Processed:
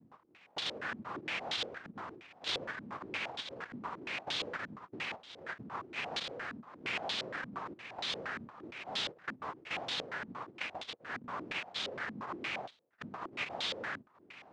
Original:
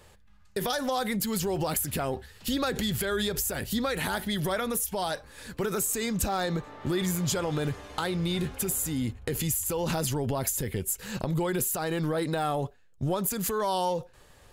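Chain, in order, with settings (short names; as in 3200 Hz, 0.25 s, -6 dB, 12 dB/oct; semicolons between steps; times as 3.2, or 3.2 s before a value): Wiener smoothing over 9 samples; compressor 6:1, threshold -44 dBFS, peak gain reduction 18.5 dB; noise vocoder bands 1; stepped low-pass 8.6 Hz 230–3600 Hz; gain +5 dB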